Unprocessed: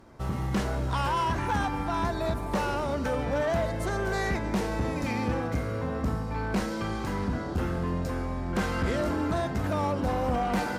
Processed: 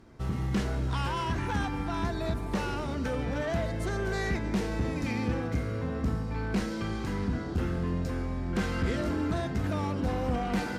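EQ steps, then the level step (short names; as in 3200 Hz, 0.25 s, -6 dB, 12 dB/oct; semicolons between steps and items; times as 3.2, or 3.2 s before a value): bell 900 Hz -6.5 dB 1.4 oct; high shelf 9300 Hz -8.5 dB; notch 570 Hz, Q 12; 0.0 dB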